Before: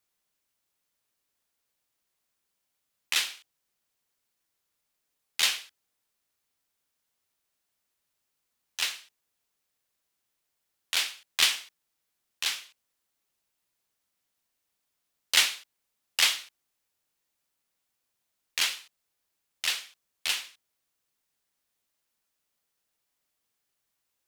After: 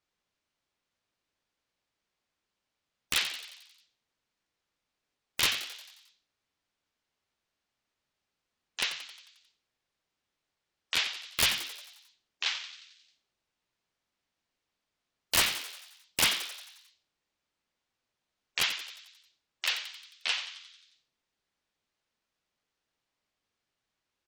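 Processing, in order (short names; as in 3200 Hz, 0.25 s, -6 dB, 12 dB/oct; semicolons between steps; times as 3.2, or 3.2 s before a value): LPF 4800 Hz 12 dB/oct; wrapped overs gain 16 dB; notches 50/100/150/200 Hz; spectral gate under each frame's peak -25 dB strong; frequency-shifting echo 89 ms, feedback 58%, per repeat +130 Hz, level -11 dB; spectral gate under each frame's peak -30 dB strong; low shelf 320 Hz +4 dB; Opus 256 kbps 48000 Hz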